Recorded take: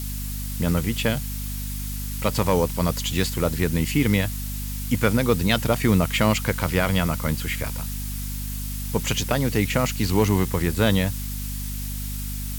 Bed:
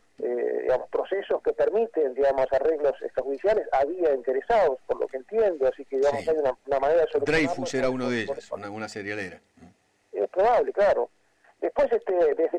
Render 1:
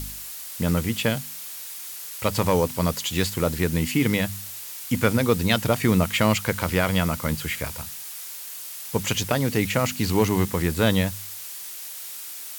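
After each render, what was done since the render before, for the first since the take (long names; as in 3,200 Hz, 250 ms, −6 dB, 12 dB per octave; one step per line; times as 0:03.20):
hum removal 50 Hz, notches 5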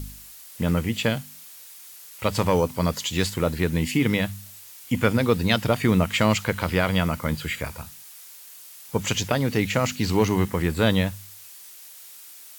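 noise reduction from a noise print 8 dB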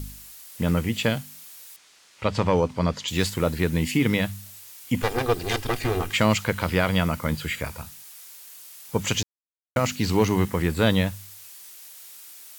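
0:01.76–0:03.08: high-frequency loss of the air 100 metres
0:05.02–0:06.13: lower of the sound and its delayed copy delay 2.5 ms
0:09.23–0:09.76: silence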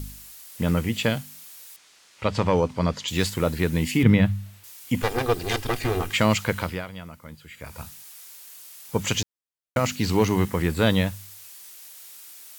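0:04.03–0:04.64: bass and treble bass +10 dB, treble −12 dB
0:06.59–0:07.82: duck −16.5 dB, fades 0.36 s quadratic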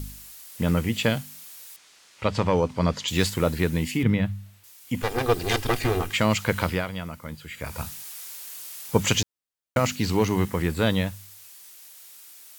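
speech leveller 0.5 s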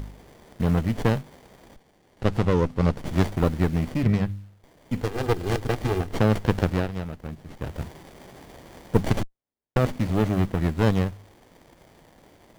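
windowed peak hold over 33 samples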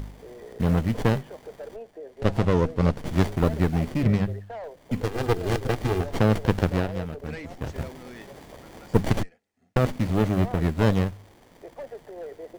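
mix in bed −16.5 dB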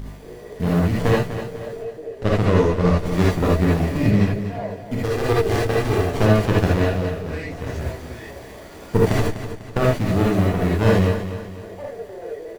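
on a send: repeating echo 248 ms, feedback 44%, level −11 dB
on the sum: reverb whose tail is shaped and stops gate 100 ms rising, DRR −4.5 dB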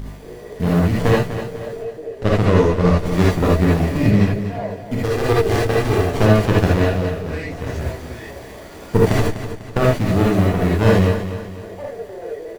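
level +2.5 dB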